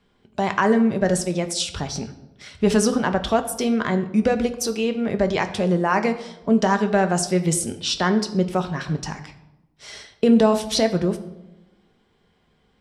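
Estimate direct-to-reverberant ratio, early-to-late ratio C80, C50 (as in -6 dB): 7.0 dB, 15.0 dB, 13.0 dB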